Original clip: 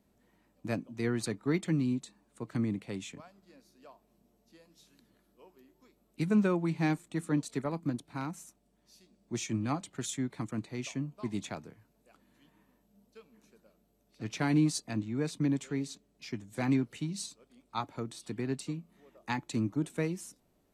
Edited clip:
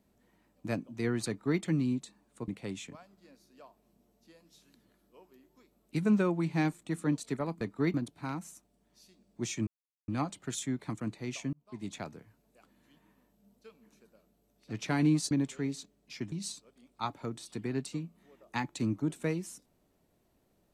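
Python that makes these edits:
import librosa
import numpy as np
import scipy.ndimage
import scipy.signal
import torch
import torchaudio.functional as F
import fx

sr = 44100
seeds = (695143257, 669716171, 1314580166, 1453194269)

y = fx.edit(x, sr, fx.duplicate(start_s=1.28, length_s=0.33, to_s=7.86),
    fx.cut(start_s=2.48, length_s=0.25),
    fx.insert_silence(at_s=9.59, length_s=0.41),
    fx.fade_in_span(start_s=11.04, length_s=0.53),
    fx.cut(start_s=14.82, length_s=0.61),
    fx.cut(start_s=16.44, length_s=0.62), tone=tone)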